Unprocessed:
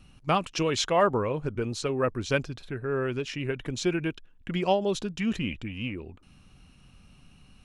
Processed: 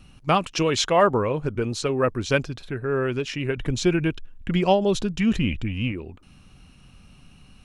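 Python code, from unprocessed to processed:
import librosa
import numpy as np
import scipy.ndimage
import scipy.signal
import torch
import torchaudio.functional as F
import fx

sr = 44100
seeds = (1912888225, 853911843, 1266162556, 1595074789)

y = fx.low_shelf(x, sr, hz=120.0, db=10.5, at=(3.57, 5.92))
y = F.gain(torch.from_numpy(y), 4.5).numpy()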